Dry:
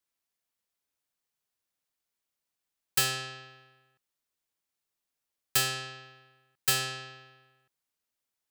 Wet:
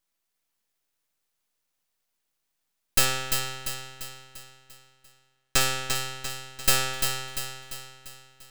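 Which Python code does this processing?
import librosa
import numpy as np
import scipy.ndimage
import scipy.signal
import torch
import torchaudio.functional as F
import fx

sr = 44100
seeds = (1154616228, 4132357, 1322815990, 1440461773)

y = fx.median_filter(x, sr, points=3, at=(3.05, 5.61))
y = fx.echo_feedback(y, sr, ms=345, feedback_pct=50, wet_db=-5.5)
y = np.maximum(y, 0.0)
y = y * 10.0 ** (9.0 / 20.0)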